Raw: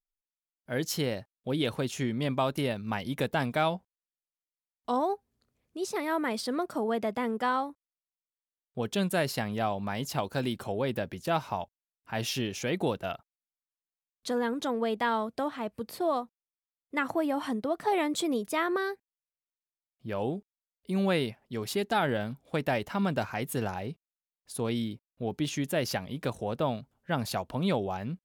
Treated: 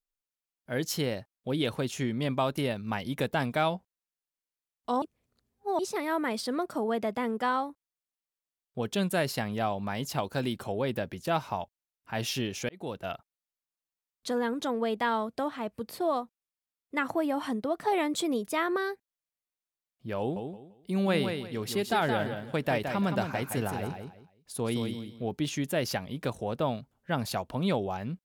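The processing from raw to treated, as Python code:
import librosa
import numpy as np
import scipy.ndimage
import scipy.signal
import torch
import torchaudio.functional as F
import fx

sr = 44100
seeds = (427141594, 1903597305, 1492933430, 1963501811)

y = fx.echo_feedback(x, sr, ms=170, feedback_pct=25, wet_db=-6.5, at=(20.19, 25.27))
y = fx.edit(y, sr, fx.reverse_span(start_s=5.02, length_s=0.77),
    fx.fade_in_span(start_s=12.69, length_s=0.45), tone=tone)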